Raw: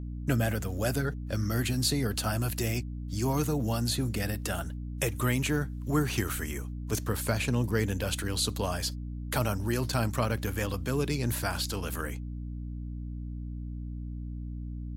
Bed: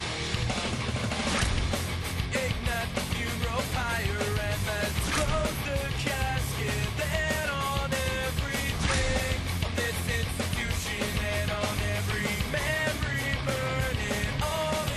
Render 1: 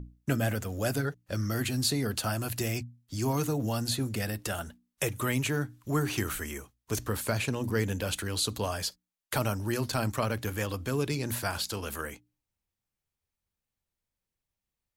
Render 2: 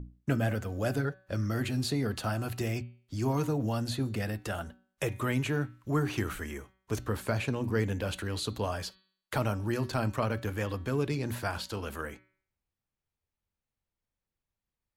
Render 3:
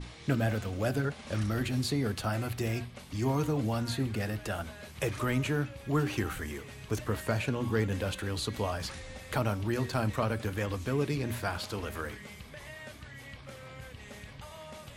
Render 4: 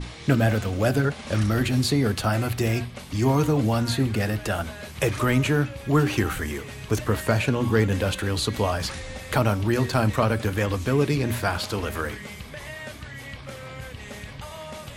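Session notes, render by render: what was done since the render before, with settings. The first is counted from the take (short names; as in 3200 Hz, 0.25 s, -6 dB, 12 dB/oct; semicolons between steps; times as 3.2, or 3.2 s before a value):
notches 60/120/180/240/300 Hz
high shelf 4300 Hz -12 dB; de-hum 189.3 Hz, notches 24
add bed -17.5 dB
gain +8.5 dB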